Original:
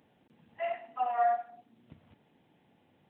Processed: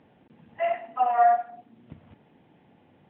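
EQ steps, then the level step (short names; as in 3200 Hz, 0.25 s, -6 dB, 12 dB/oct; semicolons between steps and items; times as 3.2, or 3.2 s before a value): air absorption 270 m; +9.0 dB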